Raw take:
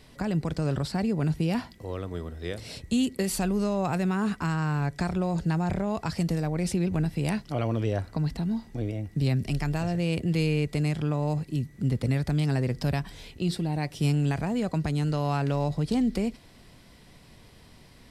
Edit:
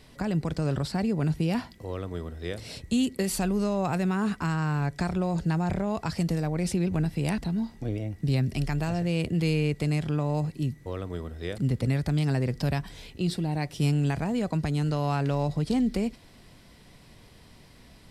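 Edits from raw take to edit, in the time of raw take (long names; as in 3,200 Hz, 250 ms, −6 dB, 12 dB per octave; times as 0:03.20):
0:01.87–0:02.59: duplicate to 0:11.79
0:07.38–0:08.31: remove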